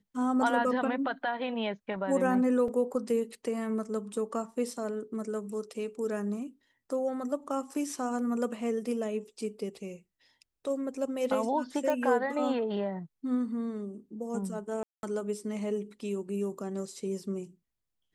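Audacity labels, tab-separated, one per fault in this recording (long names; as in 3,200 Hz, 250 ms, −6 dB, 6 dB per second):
2.680000	2.680000	drop-out 2.9 ms
11.900000	11.900000	click −19 dBFS
14.830000	15.030000	drop-out 201 ms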